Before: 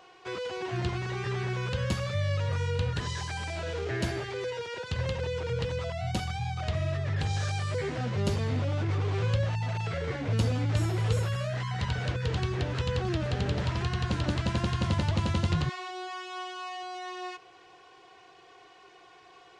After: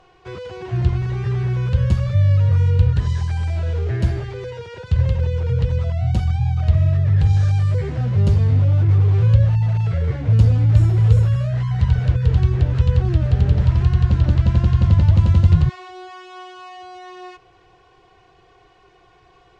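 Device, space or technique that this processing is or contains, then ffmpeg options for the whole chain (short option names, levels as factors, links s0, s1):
low shelf boost with a cut just above: -filter_complex "[0:a]aemphasis=mode=reproduction:type=riaa,aemphasis=mode=production:type=50kf,lowshelf=f=77:g=6,equalizer=f=260:t=o:w=0.69:g=-4.5,asettb=1/sr,asplit=3[s0][s1][s2];[s0]atrim=end=14.054[s3];[s1]atrim=start=14.05:end=15.09,asetpts=PTS-STARTPTS,afade=t=in:d=0.004:c=qsin,afade=t=out:st=1.036:d=0.004:c=qsin,lowpass=7700[s4];[s2]atrim=start=15.086[s5];[s3][s4]acrossfade=d=0.004:c1=hsin:c2=qsin[s6];[s6][s5]acrossfade=d=0.004:c1=qsin:c2=hsin"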